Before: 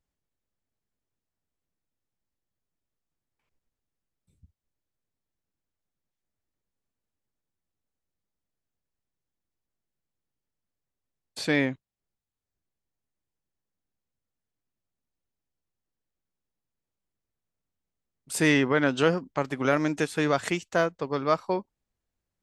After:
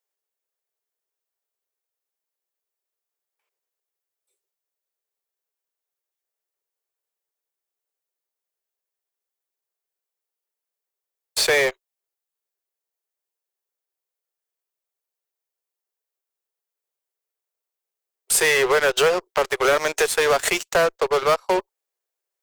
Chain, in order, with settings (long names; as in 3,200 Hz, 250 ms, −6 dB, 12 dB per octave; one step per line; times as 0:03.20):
Butterworth high-pass 370 Hz 96 dB per octave
high-shelf EQ 9,400 Hz +11.5 dB
downward compressor 2 to 1, threshold −29 dBFS, peak gain reduction 6.5 dB
in parallel at −4 dB: fuzz pedal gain 34 dB, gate −41 dBFS